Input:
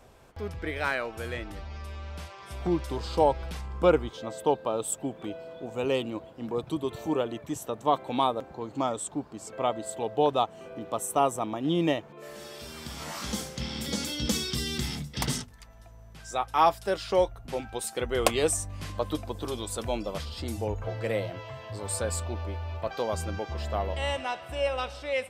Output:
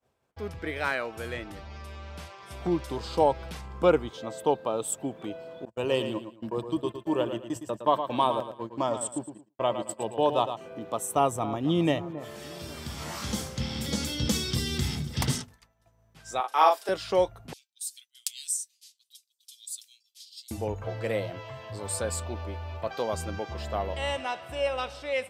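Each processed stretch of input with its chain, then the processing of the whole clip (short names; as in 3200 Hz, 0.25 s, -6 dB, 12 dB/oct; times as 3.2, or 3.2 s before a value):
5.65–10.57 gate -37 dBFS, range -43 dB + ripple EQ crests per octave 1.3, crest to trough 7 dB + feedback echo 0.112 s, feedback 30%, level -9 dB
11.15–15.35 bell 90 Hz +13.5 dB 0.87 oct + echo with dull and thin repeats by turns 0.271 s, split 1500 Hz, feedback 60%, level -13 dB
16.4–16.89 HPF 370 Hz 24 dB/oct + doubler 39 ms -4 dB
17.53–20.51 inverse Chebyshev high-pass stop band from 690 Hz, stop band 80 dB + hard clip -13 dBFS
whole clip: HPF 79 Hz; expander -44 dBFS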